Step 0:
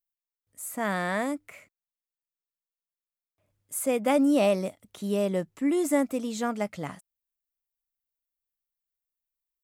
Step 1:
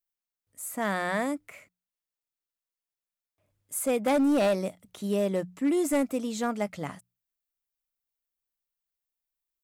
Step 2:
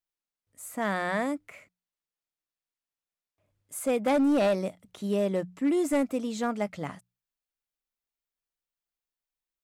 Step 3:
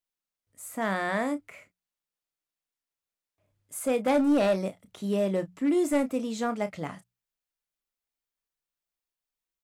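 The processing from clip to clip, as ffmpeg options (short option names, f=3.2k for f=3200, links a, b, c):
-af "asoftclip=type=hard:threshold=-20dB,bandreject=f=60:t=h:w=6,bandreject=f=120:t=h:w=6,bandreject=f=180:t=h:w=6"
-af "highshelf=f=8.1k:g=-8.5"
-filter_complex "[0:a]asplit=2[a][b];[b]adelay=31,volume=-11dB[c];[a][c]amix=inputs=2:normalize=0"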